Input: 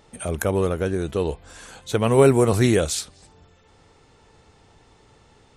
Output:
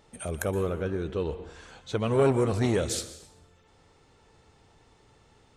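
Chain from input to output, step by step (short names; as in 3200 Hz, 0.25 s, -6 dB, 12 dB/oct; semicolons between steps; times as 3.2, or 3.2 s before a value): 0.62–2.88 LPF 3800 Hz -> 7100 Hz 12 dB/oct; plate-style reverb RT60 0.76 s, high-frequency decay 0.9×, pre-delay 0.11 s, DRR 13.5 dB; core saturation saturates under 500 Hz; gain -5.5 dB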